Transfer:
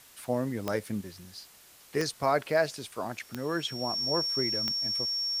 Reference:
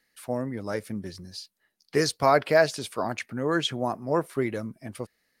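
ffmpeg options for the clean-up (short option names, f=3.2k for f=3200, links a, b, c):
-af "adeclick=t=4,bandreject=f=5.5k:w=30,afwtdn=0.002,asetnsamples=n=441:p=0,asendcmd='1.01 volume volume 6dB',volume=0dB"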